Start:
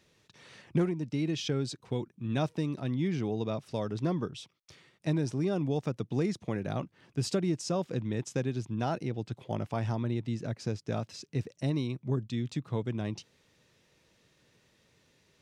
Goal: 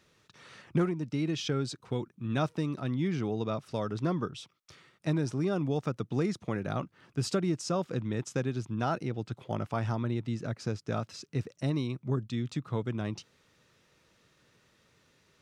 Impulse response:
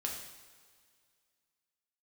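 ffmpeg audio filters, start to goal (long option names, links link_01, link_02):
-af "equalizer=frequency=1300:width_type=o:width=0.48:gain=7.5"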